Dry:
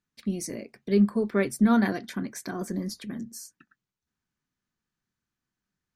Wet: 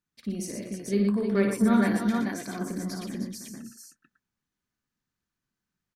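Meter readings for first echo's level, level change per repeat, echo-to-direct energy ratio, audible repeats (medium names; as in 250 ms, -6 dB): -5.0 dB, no regular repeats, 1.0 dB, 5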